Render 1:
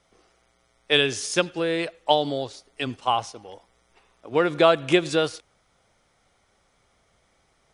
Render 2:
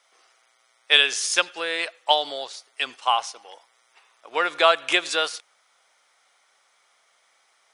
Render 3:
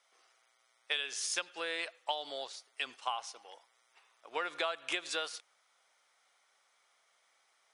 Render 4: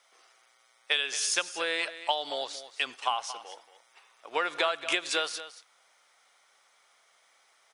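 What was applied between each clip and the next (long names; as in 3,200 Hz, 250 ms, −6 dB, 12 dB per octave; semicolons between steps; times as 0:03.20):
high-pass filter 930 Hz 12 dB per octave; level +5 dB
downward compressor 6 to 1, threshold −23 dBFS, peak gain reduction 12 dB; level −8.5 dB
single-tap delay 228 ms −13.5 dB; level +7 dB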